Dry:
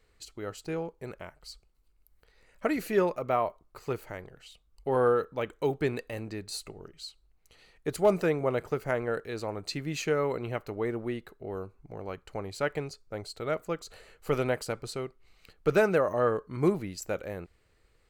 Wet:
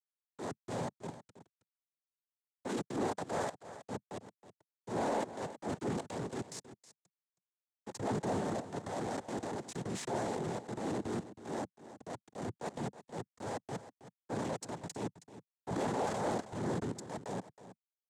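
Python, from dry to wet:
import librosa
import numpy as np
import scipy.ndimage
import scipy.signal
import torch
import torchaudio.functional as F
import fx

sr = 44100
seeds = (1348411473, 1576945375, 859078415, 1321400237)

p1 = fx.level_steps(x, sr, step_db=13)
p2 = fx.high_shelf(p1, sr, hz=2000.0, db=-2.5)
p3 = fx.quant_companded(p2, sr, bits=2)
p4 = fx.noise_vocoder(p3, sr, seeds[0], bands=6)
p5 = fx.transient(p4, sr, attack_db=-8, sustain_db=5)
p6 = p5 + fx.echo_single(p5, sr, ms=320, db=-14.5, dry=0)
p7 = 10.0 ** (-19.0 / 20.0) * np.tanh(p6 / 10.0 ** (-19.0 / 20.0))
p8 = fx.peak_eq(p7, sr, hz=3000.0, db=-11.5, octaves=2.1)
y = p8 * 10.0 ** (-3.0 / 20.0)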